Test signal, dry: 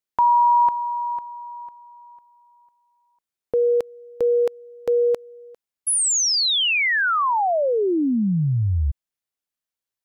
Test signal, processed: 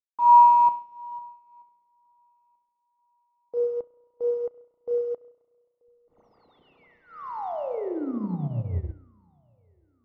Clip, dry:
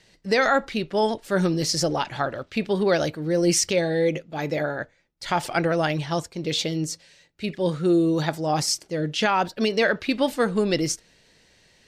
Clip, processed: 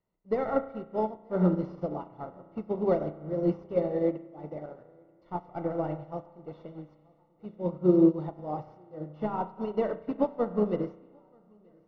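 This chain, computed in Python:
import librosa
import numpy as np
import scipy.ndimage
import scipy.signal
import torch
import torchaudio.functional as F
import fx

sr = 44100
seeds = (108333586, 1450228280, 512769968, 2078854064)

p1 = fx.cvsd(x, sr, bps=32000)
p2 = scipy.signal.savgol_filter(p1, 65, 4, mode='constant')
p3 = p2 + fx.echo_feedback(p2, sr, ms=934, feedback_pct=44, wet_db=-16, dry=0)
p4 = fx.rev_spring(p3, sr, rt60_s=1.7, pass_ms=(33,), chirp_ms=45, drr_db=4.0)
y = fx.upward_expand(p4, sr, threshold_db=-30.0, expansion=2.5)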